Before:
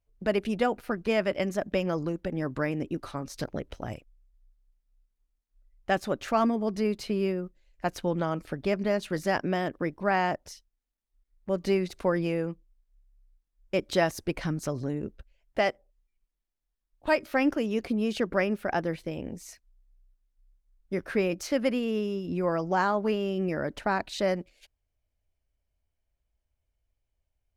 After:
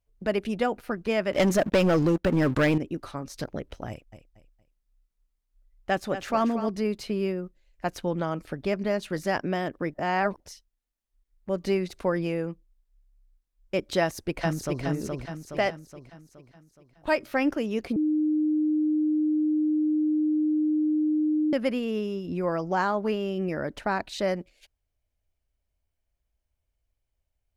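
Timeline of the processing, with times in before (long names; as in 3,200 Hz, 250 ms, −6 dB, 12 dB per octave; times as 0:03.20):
0:01.33–0:02.78: leveller curve on the samples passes 3
0:03.89–0:06.69: repeating echo 232 ms, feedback 31%, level −10.5 dB
0:09.94–0:10.40: reverse
0:14.01–0:14.83: delay throw 420 ms, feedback 50%, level −3 dB
0:17.96–0:21.53: beep over 306 Hz −21 dBFS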